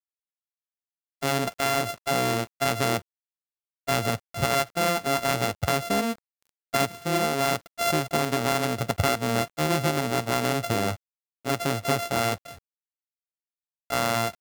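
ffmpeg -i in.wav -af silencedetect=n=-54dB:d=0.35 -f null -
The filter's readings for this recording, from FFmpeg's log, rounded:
silence_start: 0.00
silence_end: 1.21 | silence_duration: 1.21
silence_start: 3.02
silence_end: 3.87 | silence_duration: 0.85
silence_start: 10.97
silence_end: 11.45 | silence_duration: 0.48
silence_start: 12.59
silence_end: 13.90 | silence_duration: 1.32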